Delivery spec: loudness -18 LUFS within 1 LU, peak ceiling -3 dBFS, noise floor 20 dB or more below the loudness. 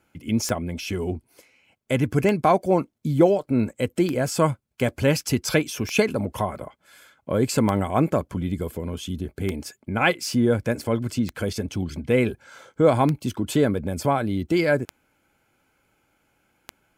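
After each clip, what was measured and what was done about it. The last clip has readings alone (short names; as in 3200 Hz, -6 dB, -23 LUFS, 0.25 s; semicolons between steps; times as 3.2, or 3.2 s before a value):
clicks 10; loudness -23.5 LUFS; peak -6.0 dBFS; loudness target -18.0 LUFS
-> de-click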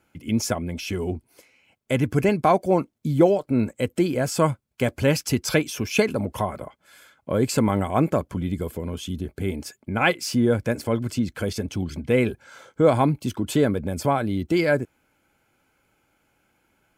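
clicks 0; loudness -23.5 LUFS; peak -6.0 dBFS; loudness target -18.0 LUFS
-> gain +5.5 dB; limiter -3 dBFS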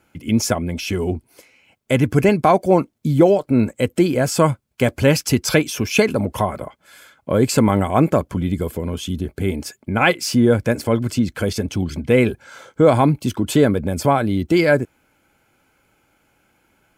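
loudness -18.5 LUFS; peak -3.0 dBFS; noise floor -64 dBFS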